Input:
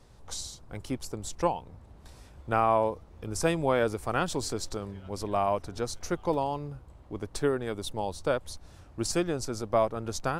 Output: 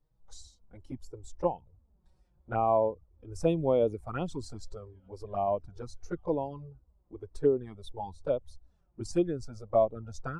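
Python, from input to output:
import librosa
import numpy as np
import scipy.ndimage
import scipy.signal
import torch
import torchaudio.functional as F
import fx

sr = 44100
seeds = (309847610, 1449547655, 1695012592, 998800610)

y = fx.env_flanger(x, sr, rest_ms=7.0, full_db=-23.0)
y = fx.spectral_expand(y, sr, expansion=1.5)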